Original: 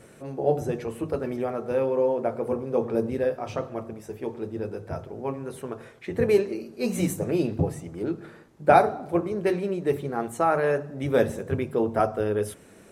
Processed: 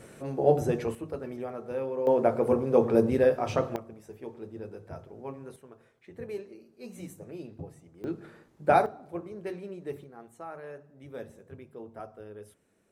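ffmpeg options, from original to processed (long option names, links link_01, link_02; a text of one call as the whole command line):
ffmpeg -i in.wav -af "asetnsamples=nb_out_samples=441:pad=0,asendcmd='0.95 volume volume -8dB;2.07 volume volume 3dB;3.76 volume volume -9dB;5.56 volume volume -17dB;8.04 volume volume -5dB;8.86 volume volume -12.5dB;10.04 volume volume -19.5dB',volume=1dB" out.wav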